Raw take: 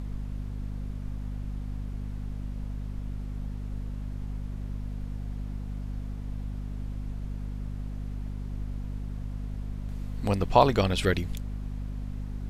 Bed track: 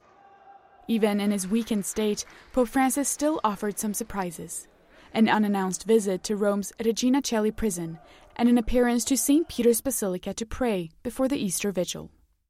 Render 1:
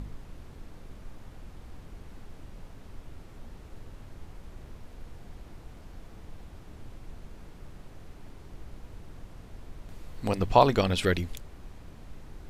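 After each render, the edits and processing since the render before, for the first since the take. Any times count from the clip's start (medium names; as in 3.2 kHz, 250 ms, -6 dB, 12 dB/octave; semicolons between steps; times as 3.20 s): de-hum 50 Hz, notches 5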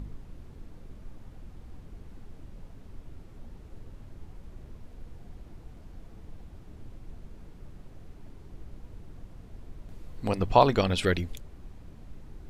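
noise reduction 6 dB, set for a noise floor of -49 dBFS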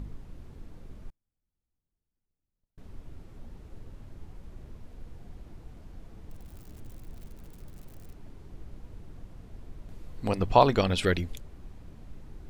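1.10–2.78 s: gate -34 dBFS, range -42 dB; 6.31–8.13 s: zero-crossing glitches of -43.5 dBFS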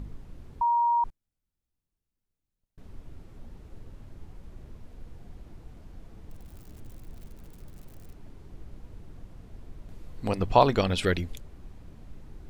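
0.61–1.04 s: bleep 945 Hz -20.5 dBFS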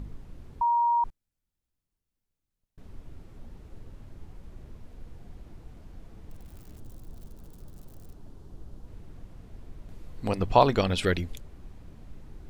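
6.77–8.88 s: peaking EQ 2.2 kHz -8.5 dB 0.84 oct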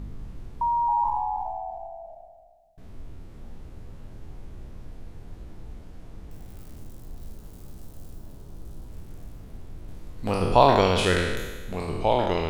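spectral sustain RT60 1.29 s; ever faster or slower copies 196 ms, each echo -2 st, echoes 3, each echo -6 dB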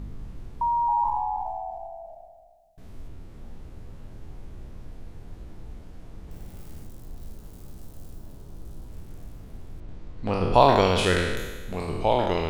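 1.46–3.08 s: treble shelf 4.4 kHz +4.5 dB; 6.22–6.86 s: flutter echo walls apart 9.6 m, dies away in 0.67 s; 9.80–10.54 s: distance through air 110 m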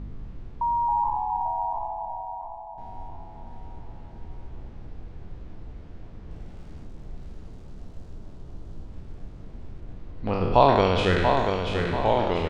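distance through air 130 m; feedback delay 687 ms, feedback 40%, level -5.5 dB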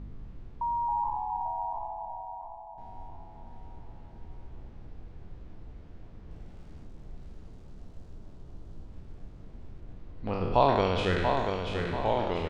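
trim -5.5 dB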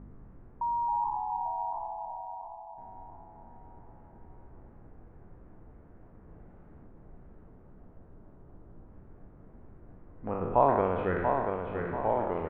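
low-pass 1.7 kHz 24 dB/octave; bass shelf 120 Hz -9.5 dB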